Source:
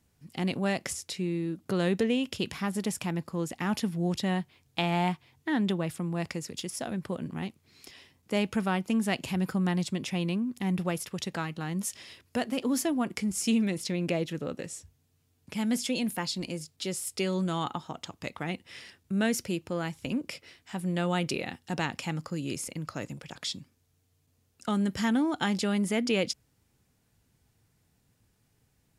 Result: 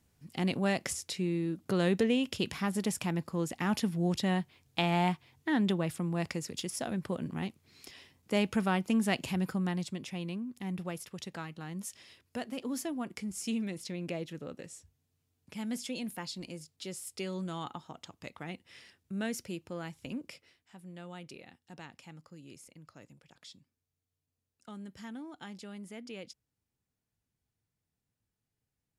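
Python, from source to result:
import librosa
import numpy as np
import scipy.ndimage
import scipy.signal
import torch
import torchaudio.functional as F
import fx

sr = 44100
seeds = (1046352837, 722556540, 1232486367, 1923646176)

y = fx.gain(x, sr, db=fx.line((9.18, -1.0), (10.08, -8.0), (20.25, -8.0), (20.76, -17.5)))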